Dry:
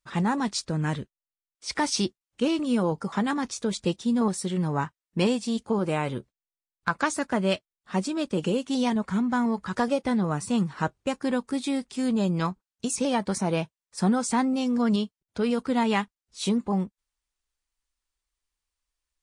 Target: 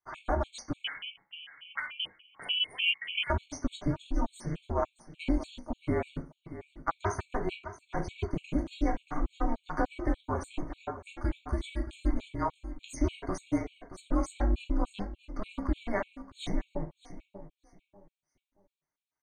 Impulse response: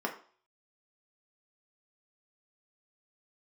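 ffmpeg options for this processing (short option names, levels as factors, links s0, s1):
-filter_complex "[0:a]highpass=f=240:p=1,acompressor=threshold=0.0355:ratio=2,aecho=1:1:627|1254|1881:0.2|0.0539|0.0145[s0];[1:a]atrim=start_sample=2205,asetrate=52920,aresample=44100[s1];[s0][s1]afir=irnorm=-1:irlink=0,asettb=1/sr,asplit=3[s2][s3][s4];[s2]atrim=end=0.844[s5];[s3]atrim=start=0.84:end=3.3,asetpts=PTS-STARTPTS,afade=t=in:d=0.004:c=qsin,afade=t=out:st=2.456:d=0.004:c=qsin,lowpass=f=3000:t=q:w=0.5098,lowpass=f=3000:t=q:w=0.6013,lowpass=f=3000:t=q:w=0.9,lowpass=f=3000:t=q:w=2.563,afreqshift=-3500[s6];[s4]atrim=start=3.296[s7];[s5][s6]acrossfade=d=0.004:c1=hsin:c2=qsin[s8];[s8][s7]acrossfade=d=0.004:c1=qsin:c2=hsin,acontrast=25,afreqshift=-210,tremolo=f=300:d=0.571,afftfilt=real='re*gt(sin(2*PI*3.4*pts/sr)*(1-2*mod(floor(b*sr/1024/2200),2)),0)':imag='im*gt(sin(2*PI*3.4*pts/sr)*(1-2*mod(floor(b*sr/1024/2200),2)),0)':win_size=1024:overlap=0.75,volume=0.473"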